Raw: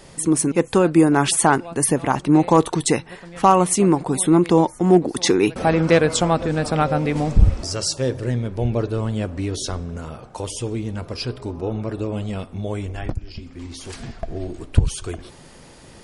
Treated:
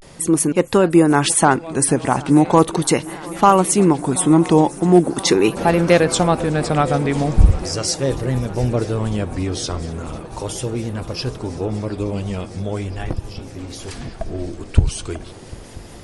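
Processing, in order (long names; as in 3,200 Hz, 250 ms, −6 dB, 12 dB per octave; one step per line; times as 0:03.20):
feedback echo with a long and a short gap by turns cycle 976 ms, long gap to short 3 to 1, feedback 79%, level −22 dB
pitch vibrato 0.39 Hz 82 cents
level +2 dB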